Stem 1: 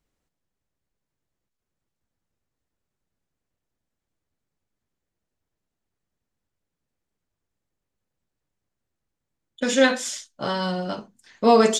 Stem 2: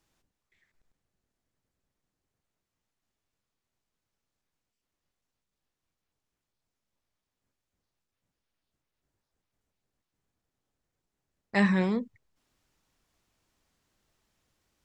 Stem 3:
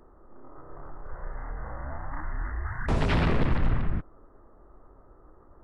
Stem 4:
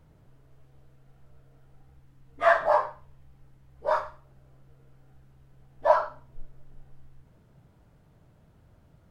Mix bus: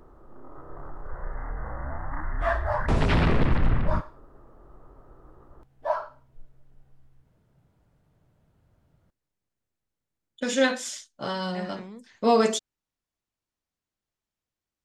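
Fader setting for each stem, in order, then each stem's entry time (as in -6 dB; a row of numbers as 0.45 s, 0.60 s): -4.5 dB, -15.0 dB, +2.5 dB, -6.5 dB; 0.80 s, 0.00 s, 0.00 s, 0.00 s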